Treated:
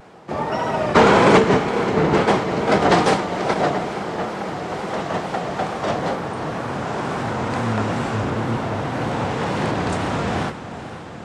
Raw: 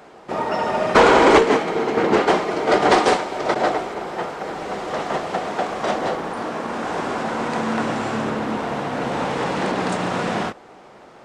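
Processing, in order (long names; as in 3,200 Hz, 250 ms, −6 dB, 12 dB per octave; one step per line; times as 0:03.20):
sub-octave generator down 1 octave, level +2 dB
high-pass filter 78 Hz
feedback delay with all-pass diffusion 486 ms, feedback 73%, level −13.5 dB
tape wow and flutter 87 cents
level −1 dB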